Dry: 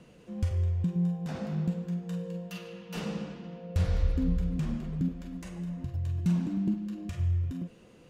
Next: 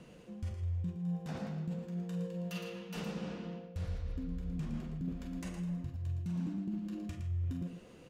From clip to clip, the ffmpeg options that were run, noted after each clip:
-af "areverse,acompressor=threshold=-36dB:ratio=6,areverse,aecho=1:1:114:0.398"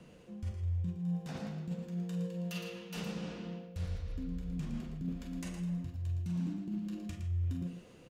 -filter_complex "[0:a]acrossover=split=330|2200[a][b][c];[a]asplit=2[d][e];[e]adelay=34,volume=-6.5dB[f];[d][f]amix=inputs=2:normalize=0[g];[c]dynaudnorm=f=350:g=5:m=4.5dB[h];[g][b][h]amix=inputs=3:normalize=0,volume=-1.5dB"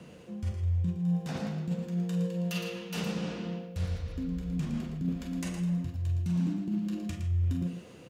-af "highpass=61,volume=6.5dB"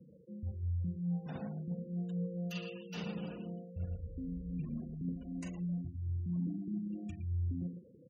-af "afftfilt=real='re*gte(hypot(re,im),0.0112)':imag='im*gte(hypot(re,im),0.0112)':win_size=1024:overlap=0.75,volume=-7dB"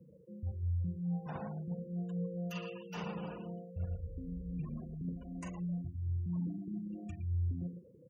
-af "equalizer=f=250:t=o:w=0.67:g=-7,equalizer=f=1k:t=o:w=0.67:g=9,equalizer=f=4k:t=o:w=0.67:g=-10,volume=1.5dB"

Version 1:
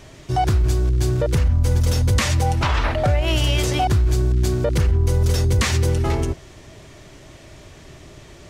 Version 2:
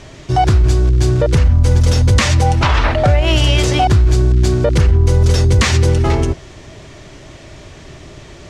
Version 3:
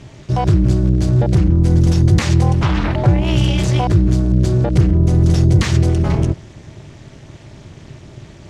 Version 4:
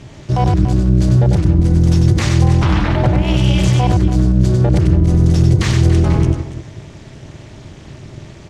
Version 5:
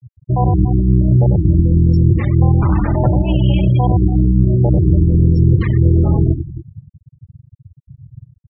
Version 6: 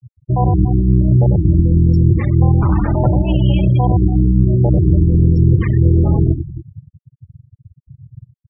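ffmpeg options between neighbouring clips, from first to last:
-af "lowpass=7.8k,volume=6.5dB"
-af "tremolo=f=250:d=0.974,acontrast=27,equalizer=f=120:w=0.85:g=10,volume=-7.5dB"
-filter_complex "[0:a]alimiter=limit=-7.5dB:level=0:latency=1:release=63,asplit=2[a][b];[b]aecho=0:1:96.21|285.7:0.562|0.251[c];[a][c]amix=inputs=2:normalize=0,volume=1.5dB"
-af "afftfilt=real='re*gte(hypot(re,im),0.178)':imag='im*gte(hypot(re,im),0.178)':win_size=1024:overlap=0.75,highshelf=f=4.5k:g=-9.5"
-af "afftfilt=real='re*gte(hypot(re,im),0.0562)':imag='im*gte(hypot(re,im),0.0562)':win_size=1024:overlap=0.75"

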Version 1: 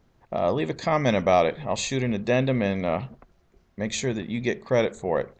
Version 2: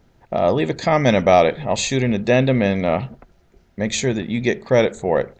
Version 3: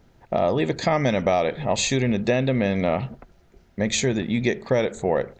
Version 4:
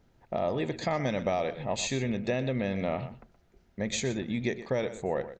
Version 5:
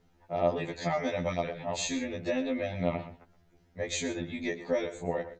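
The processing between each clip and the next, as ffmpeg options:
-af "bandreject=f=1.1k:w=7.9,volume=6.5dB"
-af "acompressor=threshold=-17dB:ratio=6"
-filter_complex "[0:a]asplit=2[a][b];[b]adelay=122.4,volume=-13dB,highshelf=f=4k:g=-2.76[c];[a][c]amix=inputs=2:normalize=0,volume=-8.5dB"
-af "afftfilt=real='re*2*eq(mod(b,4),0)':imag='im*2*eq(mod(b,4),0)':win_size=2048:overlap=0.75,volume=1.5dB"

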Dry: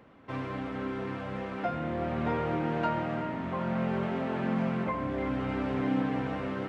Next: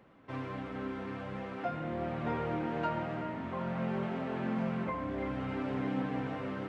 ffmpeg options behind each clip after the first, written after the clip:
-af "flanger=delay=5.2:depth=6.4:regen=-62:speed=0.5:shape=triangular"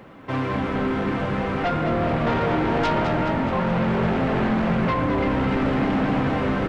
-filter_complex "[0:a]asplit=2[a][b];[b]aeval=exprs='0.0841*sin(PI/2*3.55*val(0)/0.0841)':c=same,volume=-7dB[c];[a][c]amix=inputs=2:normalize=0,asplit=9[d][e][f][g][h][i][j][k][l];[e]adelay=211,afreqshift=-52,volume=-7.5dB[m];[f]adelay=422,afreqshift=-104,volume=-11.7dB[n];[g]adelay=633,afreqshift=-156,volume=-15.8dB[o];[h]adelay=844,afreqshift=-208,volume=-20dB[p];[i]adelay=1055,afreqshift=-260,volume=-24.1dB[q];[j]adelay=1266,afreqshift=-312,volume=-28.3dB[r];[k]adelay=1477,afreqshift=-364,volume=-32.4dB[s];[l]adelay=1688,afreqshift=-416,volume=-36.6dB[t];[d][m][n][o][p][q][r][s][t]amix=inputs=9:normalize=0,volume=5dB"

